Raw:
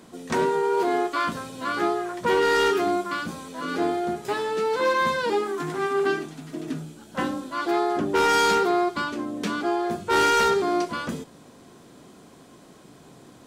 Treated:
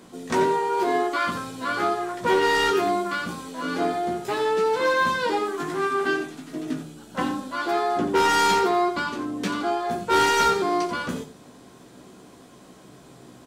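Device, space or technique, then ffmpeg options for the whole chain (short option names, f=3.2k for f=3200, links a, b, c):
slapback doubling: -filter_complex "[0:a]asplit=3[a][b][c];[b]adelay=16,volume=-5.5dB[d];[c]adelay=87,volume=-10dB[e];[a][d][e]amix=inputs=3:normalize=0"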